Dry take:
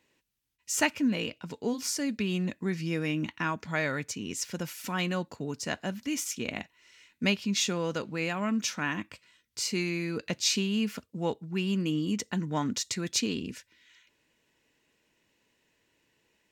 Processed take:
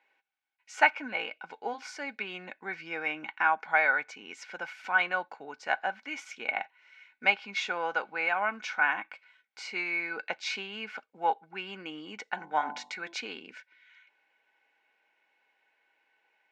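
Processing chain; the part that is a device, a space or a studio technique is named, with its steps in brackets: tin-can telephone (BPF 660–2600 Hz; small resonant body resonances 800/1500/2200 Hz, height 15 dB, ringing for 45 ms); dynamic EQ 940 Hz, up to +4 dB, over -40 dBFS, Q 0.84; 12.31–13.14 de-hum 48.46 Hz, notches 23

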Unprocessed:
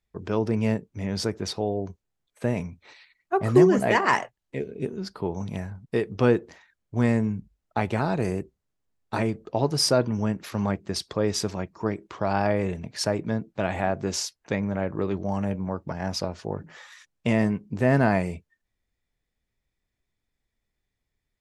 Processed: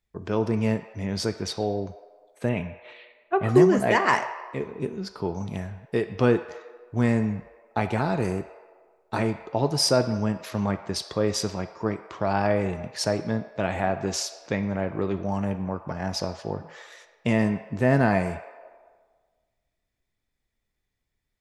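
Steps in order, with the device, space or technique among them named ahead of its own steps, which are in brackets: filtered reverb send (on a send: HPF 550 Hz 24 dB/oct + LPF 8100 Hz 12 dB/oct + reverb RT60 1.6 s, pre-delay 4 ms, DRR 8.5 dB); 2.49–3.49 on the sum: resonant high shelf 4000 Hz -9 dB, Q 3

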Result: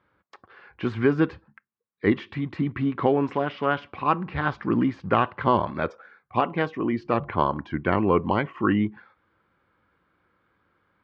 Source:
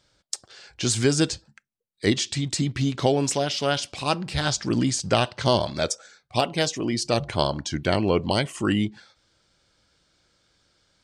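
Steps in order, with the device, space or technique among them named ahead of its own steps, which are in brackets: bass cabinet (speaker cabinet 86–2100 Hz, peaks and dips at 130 Hz -7 dB, 630 Hz -7 dB, 1100 Hz +8 dB); gain +1.5 dB

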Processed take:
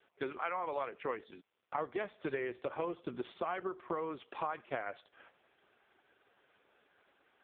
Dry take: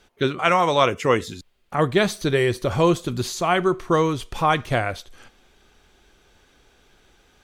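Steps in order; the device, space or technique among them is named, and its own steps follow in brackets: voicemail (BPF 390–2600 Hz; compressor 10:1, threshold -29 dBFS, peak gain reduction 16.5 dB; gain -3.5 dB; AMR-NB 4.75 kbps 8000 Hz)

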